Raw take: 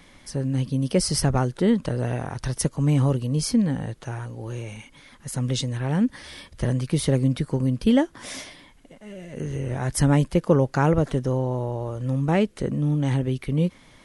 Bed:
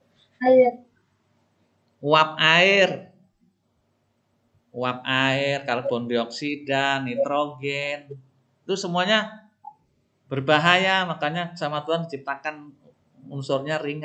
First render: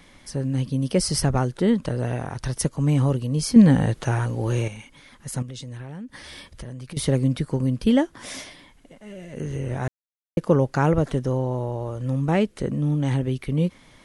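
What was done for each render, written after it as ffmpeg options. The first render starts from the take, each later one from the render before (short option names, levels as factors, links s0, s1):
-filter_complex "[0:a]asettb=1/sr,asplit=3[s0][s1][s2];[s0]atrim=end=5.424[s3];[s1]atrim=start=5.42:end=6.97,asetpts=PTS-STARTPTS,afade=t=in:d=0.004:c=qsin,afade=t=out:st=1.546:d=0.004:c=qsin,acompressor=threshold=0.0224:ratio=10:attack=3.2:release=140:knee=1:detection=peak[s4];[s2]atrim=start=6.966[s5];[s3][s4]acrossfade=d=0.004:c1=hsin:c2=qsin[s6];[s6][s5]acrossfade=d=0.004:c1=qsin:c2=hsin,asplit=5[s7][s8][s9][s10][s11];[s7]atrim=end=3.562[s12];[s8]atrim=start=3.558:end=4.682,asetpts=PTS-STARTPTS,volume=2.82[s13];[s9]atrim=start=4.678:end=9.88,asetpts=PTS-STARTPTS,afade=t=out:st=5.198:d=0.004:c=hsin[s14];[s10]atrim=start=9.88:end=10.37,asetpts=PTS-STARTPTS,volume=0[s15];[s11]atrim=start=10.37,asetpts=PTS-STARTPTS,afade=t=in:d=0.004:c=hsin[s16];[s12][s13]acrossfade=d=0.004:c1=hsin:c2=hsin[s17];[s14][s15][s16]concat=n=3:v=0:a=1[s18];[s17][s18]acrossfade=d=0.004:c1=hsin:c2=hsin"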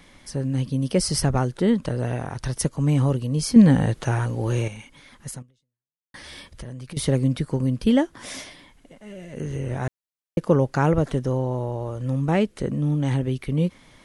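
-filter_complex "[0:a]asplit=2[s0][s1];[s0]atrim=end=6.14,asetpts=PTS-STARTPTS,afade=t=out:st=5.3:d=0.84:c=exp[s2];[s1]atrim=start=6.14,asetpts=PTS-STARTPTS,afade=t=in:d=0.004:c=hsin[s3];[s2][s3]concat=n=2:v=0:a=1"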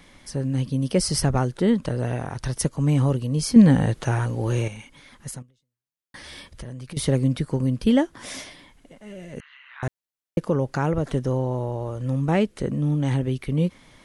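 -filter_complex "[0:a]asettb=1/sr,asplit=3[s0][s1][s2];[s0]atrim=end=9.404[s3];[s1]atrim=start=9.4:end=9.83,asetpts=PTS-STARTPTS,afade=t=in:d=0.004:c=qsin,afade=t=out:st=0.426:d=0.004:c=qsin,asuperpass=centerf=2100:order=12:qfactor=0.69[s4];[s2]atrim=start=9.826[s5];[s3][s4]acrossfade=d=0.004:c1=hsin:c2=qsin[s6];[s6][s5]acrossfade=d=0.004:c1=qsin:c2=hsin,asettb=1/sr,asplit=3[s7][s8][s9];[s7]atrim=end=10.434[s10];[s8]atrim=start=10.43:end=11.07,asetpts=PTS-STARTPTS,afade=t=in:d=0.004:c=qsin,afade=t=out:st=0.636:d=0.004:c=qsin,acompressor=threshold=0.0631:ratio=1.5:attack=3.2:release=140:knee=1:detection=peak[s11];[s9]atrim=start=11.066[s12];[s10][s11]acrossfade=d=0.004:c1=hsin:c2=qsin[s13];[s13][s12]acrossfade=d=0.004:c1=qsin:c2=hsin"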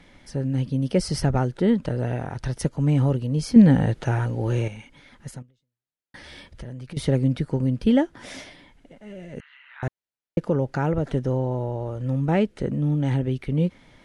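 -af "aemphasis=mode=reproduction:type=50kf,bandreject=f=1100:w=7.2"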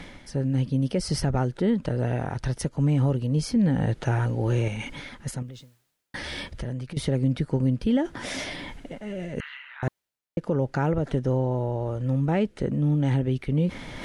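-af "areverse,acompressor=mode=upward:threshold=0.0631:ratio=2.5,areverse,alimiter=limit=0.178:level=0:latency=1:release=126"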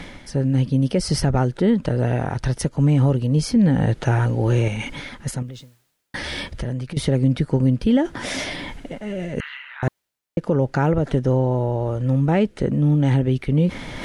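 -af "volume=1.88"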